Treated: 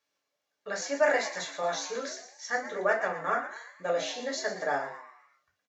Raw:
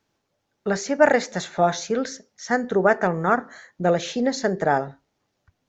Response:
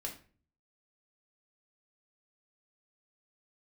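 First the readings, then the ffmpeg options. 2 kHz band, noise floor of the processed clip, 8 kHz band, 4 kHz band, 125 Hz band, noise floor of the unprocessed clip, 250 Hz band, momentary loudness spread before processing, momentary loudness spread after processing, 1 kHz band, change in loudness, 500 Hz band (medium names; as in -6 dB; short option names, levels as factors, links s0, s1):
-5.0 dB, -83 dBFS, no reading, -3.5 dB, -21.0 dB, -76 dBFS, -17.0 dB, 10 LU, 14 LU, -8.5 dB, -8.5 dB, -8.5 dB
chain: -filter_complex "[0:a]highpass=f=1300:p=1,asplit=6[s0][s1][s2][s3][s4][s5];[s1]adelay=116,afreqshift=110,volume=0.266[s6];[s2]adelay=232,afreqshift=220,volume=0.12[s7];[s3]adelay=348,afreqshift=330,volume=0.0537[s8];[s4]adelay=464,afreqshift=440,volume=0.0243[s9];[s5]adelay=580,afreqshift=550,volume=0.011[s10];[s0][s6][s7][s8][s9][s10]amix=inputs=6:normalize=0[s11];[1:a]atrim=start_sample=2205,atrim=end_sample=3528[s12];[s11][s12]afir=irnorm=-1:irlink=0,volume=0.794"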